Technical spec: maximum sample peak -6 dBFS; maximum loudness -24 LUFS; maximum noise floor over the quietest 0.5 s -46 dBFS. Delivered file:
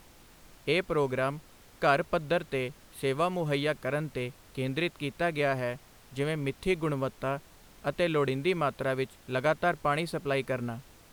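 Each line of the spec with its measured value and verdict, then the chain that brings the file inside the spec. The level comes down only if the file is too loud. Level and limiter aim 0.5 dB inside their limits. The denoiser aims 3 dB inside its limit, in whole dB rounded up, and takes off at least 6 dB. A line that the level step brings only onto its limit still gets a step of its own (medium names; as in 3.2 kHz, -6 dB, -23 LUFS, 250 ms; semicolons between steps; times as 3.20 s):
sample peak -13.0 dBFS: pass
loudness -30.5 LUFS: pass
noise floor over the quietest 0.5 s -55 dBFS: pass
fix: none needed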